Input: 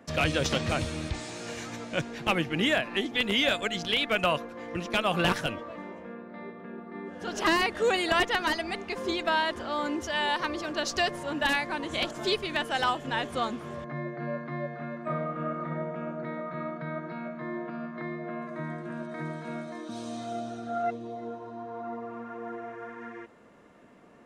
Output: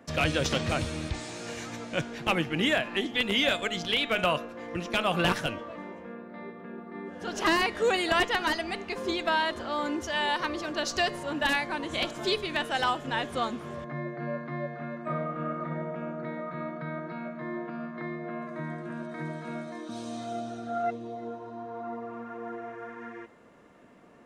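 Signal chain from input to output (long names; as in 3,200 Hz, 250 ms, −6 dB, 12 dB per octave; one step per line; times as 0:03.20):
hum removal 209.2 Hz, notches 38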